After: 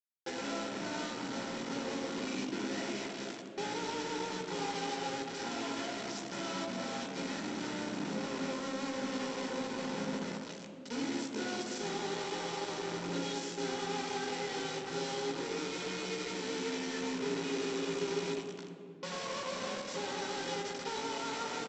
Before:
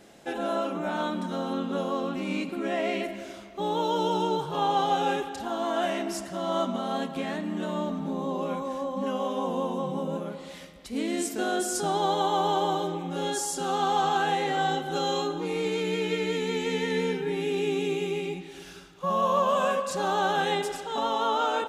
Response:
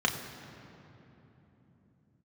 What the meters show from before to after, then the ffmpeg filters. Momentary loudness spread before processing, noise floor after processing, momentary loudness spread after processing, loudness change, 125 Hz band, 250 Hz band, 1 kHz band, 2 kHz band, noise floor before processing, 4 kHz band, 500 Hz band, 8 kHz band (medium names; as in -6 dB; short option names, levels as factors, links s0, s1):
8 LU, -46 dBFS, 3 LU, -9.0 dB, -9.0 dB, -7.0 dB, -13.5 dB, -6.0 dB, -45 dBFS, -5.0 dB, -10.0 dB, -5.0 dB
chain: -filter_complex "[0:a]acompressor=threshold=0.0178:ratio=10,aresample=16000,acrusher=bits=5:mix=0:aa=0.000001,aresample=44100[s0];[1:a]atrim=start_sample=2205,asetrate=83790,aresample=44100[s1];[s0][s1]afir=irnorm=-1:irlink=0,volume=0.447"